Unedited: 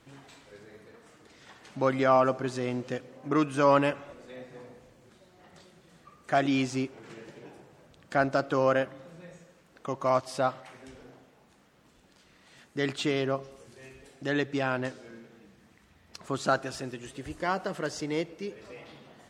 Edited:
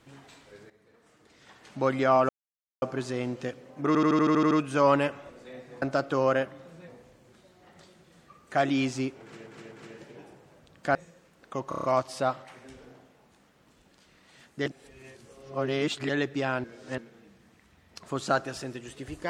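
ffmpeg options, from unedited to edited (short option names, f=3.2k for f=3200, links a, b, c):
-filter_complex "[0:a]asplit=25[a][b][c][d][e][f][g][h][i][j][k][l][m][n][o][p][q][r][s][t][u][v][w][x][y];[a]atrim=end=0.7,asetpts=PTS-STARTPTS,afade=t=out:st=0.696:d=0.004:c=hsin:silence=0.211349[z];[b]atrim=start=0.7:end=2.29,asetpts=PTS-STARTPTS,afade=t=in:d=1.07:silence=0.211349,afade=t=out:st=1.586:d=0.004:c=hsin,apad=pad_dur=0.53[aa];[c]atrim=start=2.29:end=3.422,asetpts=PTS-STARTPTS,afade=t=in:d=0.004:c=hsin[ab];[d]atrim=start=3.338:end=3.422[ac];[e]atrim=start=3.338:end=3.422[ad];[f]atrim=start=3.338:end=3.422[ae];[g]atrim=start=3.338:end=3.422[af];[h]atrim=start=3.338:end=3.422[ag];[i]atrim=start=3.338:end=3.422[ah];[j]atrim=start=3.338:end=3.422[ai];[k]atrim=start=3.338:end=4.652[aj];[l]atrim=start=8.218:end=9.282[ak];[m]atrim=start=4.648:end=7.232[al];[n]atrim=start=6.978:end=7.232[am];[o]atrim=start=6.978:end=8.222[an];[p]atrim=start=9.278:end=10.052[ao];[q]atrim=start=10.018:end=10.052[ap];[r]atrim=start=10.018:end=10.052[aq];[s]atrim=start=10.018:end=10.052[ar];[t]atrim=start=10.018:end=10.052[as];[u]atrim=start=10.018:end=12.842[at];[v]atrim=start=12.838:end=14.272,asetpts=PTS-STARTPTS,areverse[au];[w]atrim=start=14.268:end=14.822[av];[x]atrim=start=14.818:end=15.162,asetpts=PTS-STARTPTS,areverse[aw];[y]atrim=start=15.158[ax];[z][aa][ab]concat=n=3:v=0:a=1[ay];[ay][ac]acrossfade=d=0.004:c1=hsin:c2=hsin[az];[az][ad]acrossfade=d=0.004:c1=hsin:c2=hsin[ba];[ba][ae]acrossfade=d=0.004:c1=hsin:c2=hsin[bb];[bb][af]acrossfade=d=0.004:c1=hsin:c2=hsin[bc];[bc][ag]acrossfade=d=0.004:c1=hsin:c2=hsin[bd];[bd][ah]acrossfade=d=0.004:c1=hsin:c2=hsin[be];[be][ai]acrossfade=d=0.004:c1=hsin:c2=hsin[bf];[bf][aj]acrossfade=d=0.004:c1=hsin:c2=hsin[bg];[bg][ak]acrossfade=d=0.004:c1=hsin:c2=hsin[bh];[bh][al]acrossfade=d=0.004:c1=hsin:c2=hsin[bi];[bi][am]acrossfade=d=0.004:c1=hsin:c2=hsin[bj];[bj][an]acrossfade=d=0.004:c1=hsin:c2=hsin[bk];[bk][ao]acrossfade=d=0.004:c1=hsin:c2=hsin[bl];[bl][ap]acrossfade=d=0.004:c1=hsin:c2=hsin[bm];[bm][aq]acrossfade=d=0.004:c1=hsin:c2=hsin[bn];[bn][ar]acrossfade=d=0.004:c1=hsin:c2=hsin[bo];[bo][as]acrossfade=d=0.004:c1=hsin:c2=hsin[bp];[bp][at]acrossfade=d=0.004:c1=hsin:c2=hsin[bq];[bq][au]acrossfade=d=0.004:c1=hsin:c2=hsin[br];[br][av]acrossfade=d=0.004:c1=hsin:c2=hsin[bs];[bs][aw]acrossfade=d=0.004:c1=hsin:c2=hsin[bt];[bt][ax]acrossfade=d=0.004:c1=hsin:c2=hsin"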